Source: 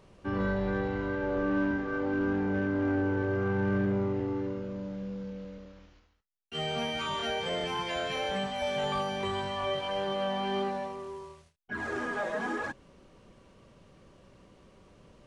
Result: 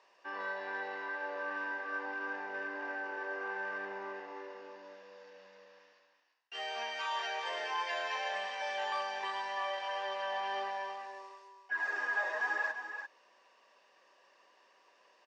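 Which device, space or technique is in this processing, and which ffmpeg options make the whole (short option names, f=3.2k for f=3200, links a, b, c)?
phone speaker on a table: -af "highpass=f=450:w=0.5412,highpass=f=450:w=1.3066,equalizer=f=1k:t=q:w=4:g=4,equalizer=f=1.7k:t=q:w=4:g=8,equalizer=f=2.5k:t=q:w=4:g=5,equalizer=f=5.1k:t=q:w=4:g=8,lowpass=f=7.4k:w=0.5412,lowpass=f=7.4k:w=1.3066,aecho=1:1:1.1:0.38,aecho=1:1:342:0.398,volume=-6.5dB"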